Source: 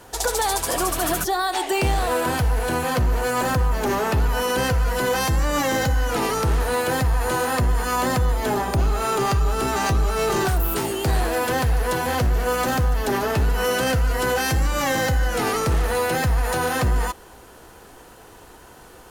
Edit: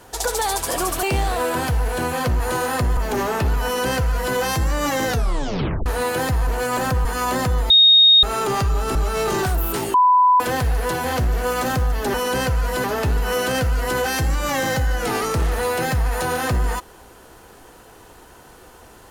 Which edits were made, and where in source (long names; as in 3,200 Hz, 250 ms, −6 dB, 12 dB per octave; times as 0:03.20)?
0:01.03–0:01.74: remove
0:03.11–0:03.69: swap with 0:07.19–0:07.76
0:04.37–0:05.07: duplicate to 0:13.16
0:05.80: tape stop 0.78 s
0:08.41–0:08.94: beep over 3,720 Hz −8 dBFS
0:09.66–0:09.97: remove
0:10.96–0:11.42: beep over 997 Hz −10.5 dBFS